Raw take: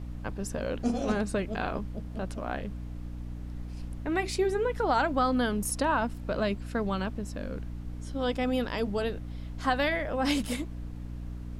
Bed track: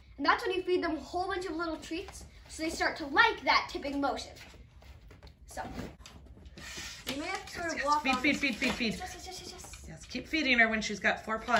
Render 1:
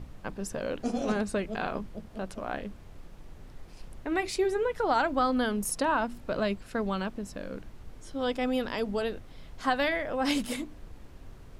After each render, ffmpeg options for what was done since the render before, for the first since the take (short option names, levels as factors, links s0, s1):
-af "bandreject=f=60:t=h:w=6,bandreject=f=120:t=h:w=6,bandreject=f=180:t=h:w=6,bandreject=f=240:t=h:w=6,bandreject=f=300:t=h:w=6"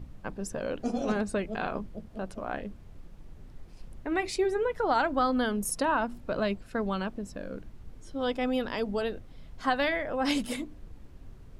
-af "afftdn=nr=6:nf=-48"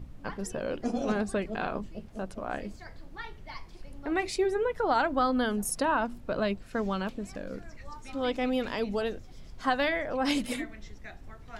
-filter_complex "[1:a]volume=0.119[s0];[0:a][s0]amix=inputs=2:normalize=0"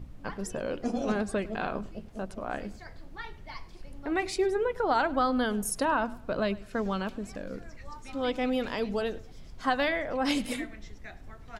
-filter_complex "[0:a]asplit=2[s0][s1];[s1]adelay=103,lowpass=f=4000:p=1,volume=0.106,asplit=2[s2][s3];[s3]adelay=103,lowpass=f=4000:p=1,volume=0.31,asplit=2[s4][s5];[s5]adelay=103,lowpass=f=4000:p=1,volume=0.31[s6];[s0][s2][s4][s6]amix=inputs=4:normalize=0"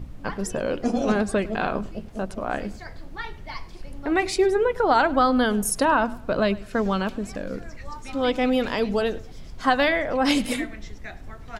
-af "volume=2.24"